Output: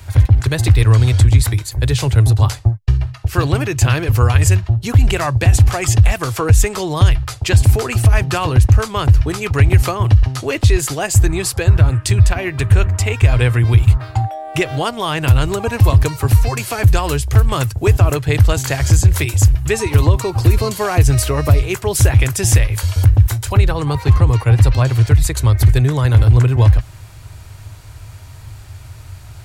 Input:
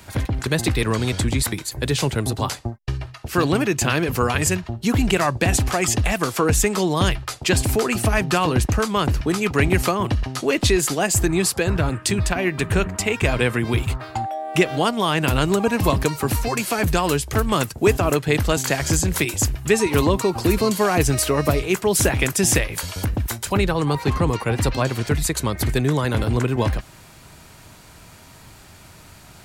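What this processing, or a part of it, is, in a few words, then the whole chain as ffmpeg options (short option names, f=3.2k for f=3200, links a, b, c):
car stereo with a boomy subwoofer: -af "lowshelf=f=140:t=q:w=3:g=10,alimiter=limit=-2.5dB:level=0:latency=1:release=71,volume=1dB"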